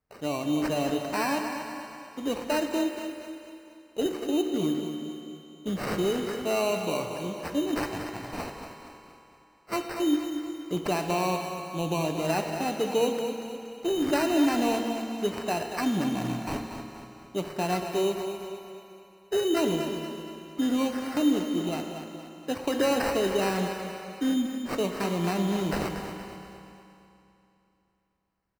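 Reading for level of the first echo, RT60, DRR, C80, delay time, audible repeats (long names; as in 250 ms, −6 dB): −9.0 dB, 2.9 s, 3.0 dB, 4.0 dB, 235 ms, 5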